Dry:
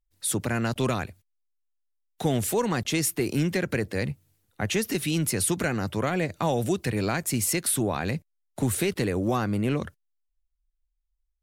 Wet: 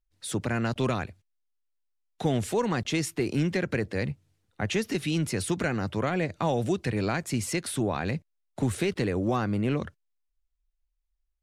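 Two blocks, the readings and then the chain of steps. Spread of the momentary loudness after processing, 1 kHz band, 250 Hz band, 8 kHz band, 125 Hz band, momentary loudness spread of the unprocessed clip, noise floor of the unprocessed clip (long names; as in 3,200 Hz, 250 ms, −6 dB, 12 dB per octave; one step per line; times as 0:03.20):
6 LU, −1.5 dB, −1.0 dB, −8.5 dB, −1.0 dB, 7 LU, −77 dBFS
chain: high-frequency loss of the air 63 metres
level −1 dB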